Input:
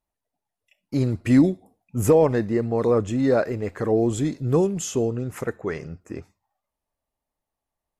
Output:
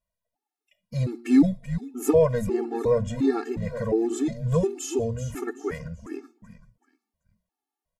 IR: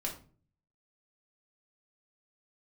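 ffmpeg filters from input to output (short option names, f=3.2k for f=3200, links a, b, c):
-filter_complex "[0:a]bandreject=f=118.1:t=h:w=4,bandreject=f=236.2:t=h:w=4,bandreject=f=354.3:t=h:w=4,asplit=4[a][b][c][d];[b]adelay=382,afreqshift=-99,volume=-12dB[e];[c]adelay=764,afreqshift=-198,volume=-21.6dB[f];[d]adelay=1146,afreqshift=-297,volume=-31.3dB[g];[a][e][f][g]amix=inputs=4:normalize=0,afftfilt=real='re*gt(sin(2*PI*1.4*pts/sr)*(1-2*mod(floor(b*sr/1024/230),2)),0)':imag='im*gt(sin(2*PI*1.4*pts/sr)*(1-2*mod(floor(b*sr/1024/230),2)),0)':win_size=1024:overlap=0.75"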